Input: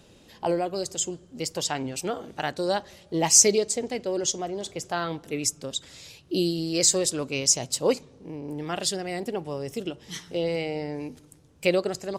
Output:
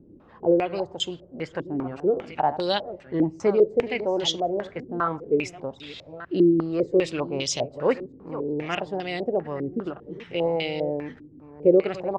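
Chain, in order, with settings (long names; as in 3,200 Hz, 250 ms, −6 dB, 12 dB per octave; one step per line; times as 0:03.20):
delay that plays each chunk backwards 625 ms, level −13.5 dB
low-pass on a step sequencer 5 Hz 310–3,400 Hz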